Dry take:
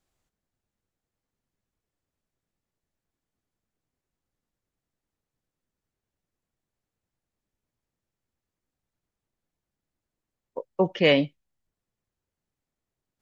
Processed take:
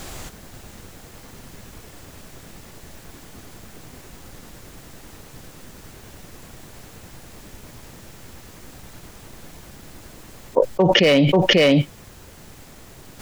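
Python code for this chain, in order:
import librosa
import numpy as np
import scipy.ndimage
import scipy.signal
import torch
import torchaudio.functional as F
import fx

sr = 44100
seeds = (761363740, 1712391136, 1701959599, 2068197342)

y = fx.rider(x, sr, range_db=10, speed_s=0.5)
y = np.clip(10.0 ** (15.0 / 20.0) * y, -1.0, 1.0) / 10.0 ** (15.0 / 20.0)
y = y + 10.0 ** (-17.0 / 20.0) * np.pad(y, (int(539 * sr / 1000.0), 0))[:len(y)]
y = fx.env_flatten(y, sr, amount_pct=100)
y = F.gain(torch.from_numpy(y), 5.0).numpy()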